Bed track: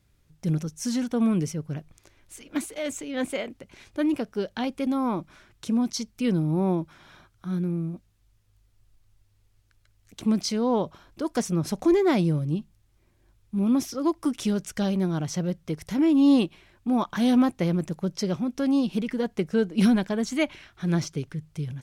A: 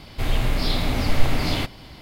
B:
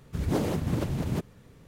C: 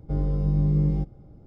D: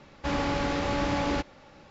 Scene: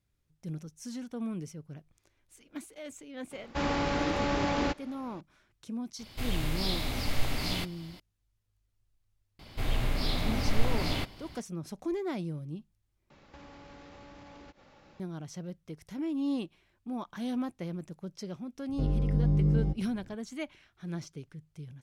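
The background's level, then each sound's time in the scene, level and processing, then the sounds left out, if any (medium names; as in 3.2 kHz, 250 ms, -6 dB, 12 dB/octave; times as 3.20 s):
bed track -13 dB
3.31 s: add D -1.5 dB + peaking EQ 75 Hz -2.5 dB
5.99 s: add A -11 dB + treble shelf 2.7 kHz +8 dB
9.39 s: add A -7.5 dB
13.10 s: replace with D -6 dB + compression 12:1, threshold -41 dBFS
18.69 s: add C -3.5 dB
not used: B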